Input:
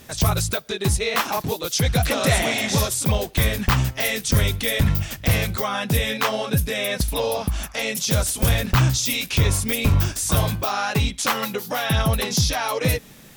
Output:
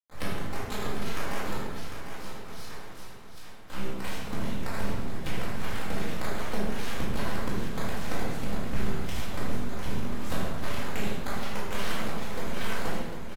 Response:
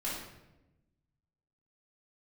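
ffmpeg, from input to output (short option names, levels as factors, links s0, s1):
-filter_complex "[0:a]agate=range=0.1:threshold=0.0282:ratio=16:detection=peak,aemphasis=mode=reproduction:type=75kf,acompressor=threshold=0.0398:ratio=12,aeval=exprs='0.158*(cos(1*acos(clip(val(0)/0.158,-1,1)))-cos(1*PI/2))+0.0398*(cos(7*acos(clip(val(0)/0.158,-1,1)))-cos(7*PI/2))':c=same,asettb=1/sr,asplit=3[s0][s1][s2];[s0]atrim=end=1.554[s3];[s1]atrim=start=1.55:end=3.7,asetpts=PTS-STARTPTS,afade=t=in:d=0.004:c=qsin,afade=t=out:st=2.146:d=0.004:c=qsin,bandpass=f=5000:t=q:w=3.4:csg=0[s4];[s2]atrim=start=3.696[s5];[s3][s4]acrossfade=d=0.004:c1=hsin:c2=qsin[s6];[s6][s5]acrossfade=d=0.004:c1=qsin:c2=hsin,acrusher=samples=9:mix=1:aa=0.000001:lfo=1:lforange=14.4:lforate=2.6,aeval=exprs='max(val(0),0)':c=same,acrusher=bits=7:mix=0:aa=0.000001,aecho=1:1:750|1500|2250|3000:0.355|0.138|0.054|0.021[s7];[1:a]atrim=start_sample=2205,asetrate=31752,aresample=44100[s8];[s7][s8]afir=irnorm=-1:irlink=0"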